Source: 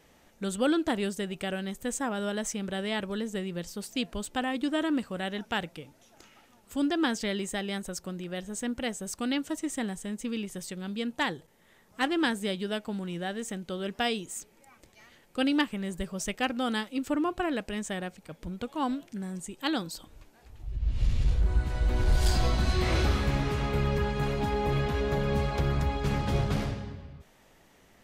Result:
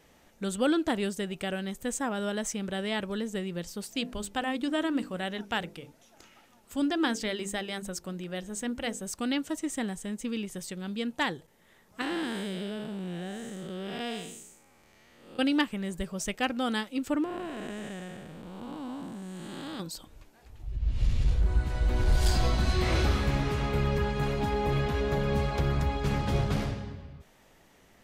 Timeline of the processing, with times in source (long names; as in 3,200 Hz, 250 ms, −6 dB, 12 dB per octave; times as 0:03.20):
0:03.95–0:09.03: mains-hum notches 50/100/150/200/250/300/350/400/450/500 Hz
0:12.01–0:15.39: spectrum smeared in time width 264 ms
0:17.24–0:19.80: spectrum smeared in time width 464 ms